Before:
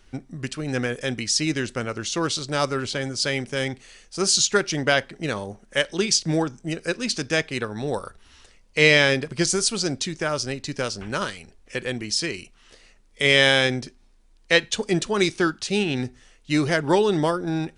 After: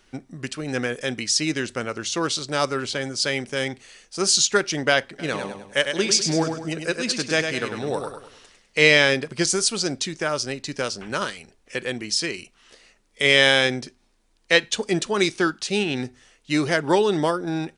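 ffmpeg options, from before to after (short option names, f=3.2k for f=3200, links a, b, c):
-filter_complex "[0:a]asplit=3[a][b][c];[a]afade=t=out:st=5.18:d=0.02[d];[b]aecho=1:1:101|202|303|404|505:0.473|0.194|0.0795|0.0326|0.0134,afade=t=in:st=5.18:d=0.02,afade=t=out:st=8.84:d=0.02[e];[c]afade=t=in:st=8.84:d=0.02[f];[d][e][f]amix=inputs=3:normalize=0,lowshelf=f=110:g=-11.5,bandreject=f=50:t=h:w=6,bandreject=f=100:t=h:w=6,volume=1dB"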